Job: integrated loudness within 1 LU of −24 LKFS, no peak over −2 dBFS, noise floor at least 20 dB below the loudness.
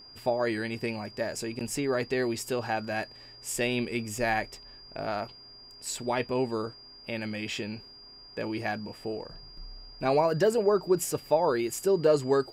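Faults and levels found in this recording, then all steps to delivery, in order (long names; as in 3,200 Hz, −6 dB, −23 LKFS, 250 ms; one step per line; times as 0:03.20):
interfering tone 4,800 Hz; level of the tone −48 dBFS; integrated loudness −29.5 LKFS; sample peak −12.0 dBFS; target loudness −24.0 LKFS
→ notch filter 4,800 Hz, Q 30
level +5.5 dB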